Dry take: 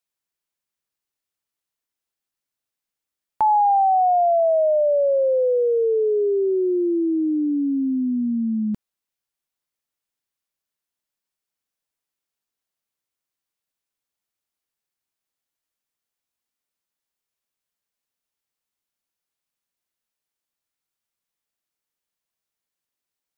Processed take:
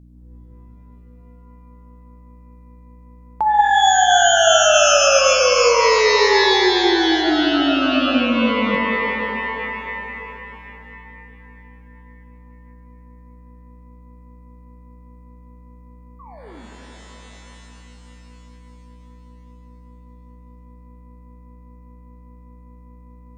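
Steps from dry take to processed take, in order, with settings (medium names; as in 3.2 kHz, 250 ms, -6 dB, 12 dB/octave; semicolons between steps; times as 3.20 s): painted sound fall, 16.19–16.67 s, 200–1200 Hz -43 dBFS; hum 60 Hz, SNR 20 dB; pitch-shifted reverb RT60 3.4 s, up +12 st, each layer -2 dB, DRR 1.5 dB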